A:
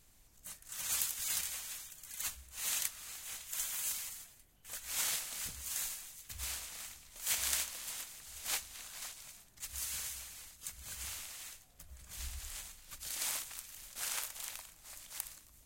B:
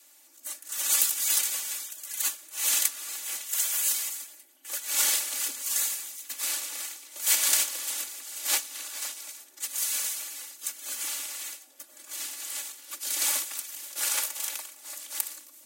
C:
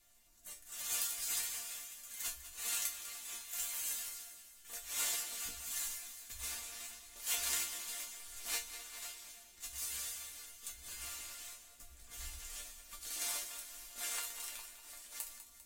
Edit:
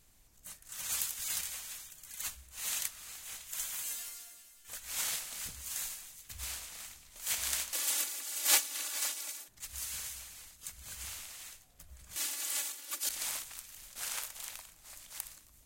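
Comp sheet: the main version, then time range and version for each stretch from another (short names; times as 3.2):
A
3.83–4.68 from C
7.73–9.48 from B
12.16–13.09 from B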